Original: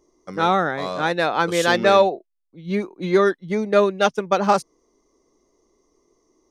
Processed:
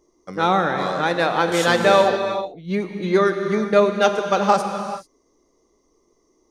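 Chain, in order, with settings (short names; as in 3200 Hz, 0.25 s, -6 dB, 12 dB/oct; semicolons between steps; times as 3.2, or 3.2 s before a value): non-linear reverb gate 0.46 s flat, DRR 5.5 dB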